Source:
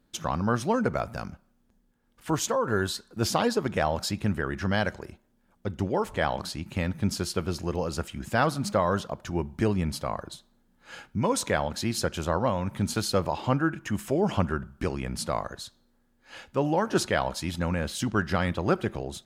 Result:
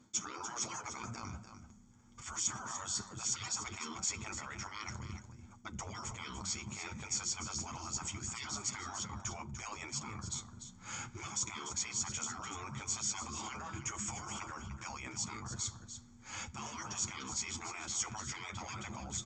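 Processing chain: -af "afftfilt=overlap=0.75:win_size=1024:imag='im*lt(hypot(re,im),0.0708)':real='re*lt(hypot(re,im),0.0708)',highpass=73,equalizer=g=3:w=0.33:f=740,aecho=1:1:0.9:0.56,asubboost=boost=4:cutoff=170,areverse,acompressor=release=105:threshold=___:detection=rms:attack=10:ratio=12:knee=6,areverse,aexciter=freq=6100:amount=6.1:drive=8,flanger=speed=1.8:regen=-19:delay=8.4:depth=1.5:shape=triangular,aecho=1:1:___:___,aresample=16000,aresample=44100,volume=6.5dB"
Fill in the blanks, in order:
-44dB, 295, 0.316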